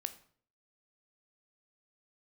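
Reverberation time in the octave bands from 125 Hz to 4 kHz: 0.60, 0.60, 0.55, 0.50, 0.45, 0.40 seconds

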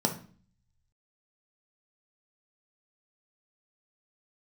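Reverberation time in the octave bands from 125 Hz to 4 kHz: 1.0, 0.70, 0.45, 0.40, 0.40, 0.40 seconds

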